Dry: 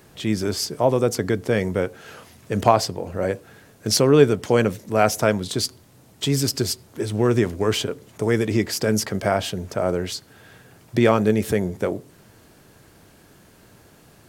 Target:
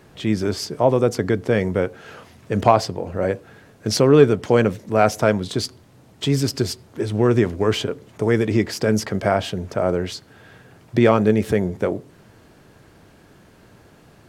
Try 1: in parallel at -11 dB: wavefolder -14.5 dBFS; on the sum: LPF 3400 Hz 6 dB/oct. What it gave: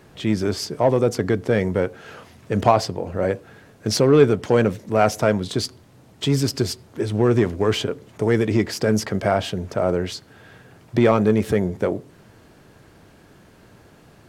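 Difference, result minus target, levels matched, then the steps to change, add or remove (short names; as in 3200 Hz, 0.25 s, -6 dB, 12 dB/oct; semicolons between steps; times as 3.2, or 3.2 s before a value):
wavefolder: distortion +15 dB
change: wavefolder -7 dBFS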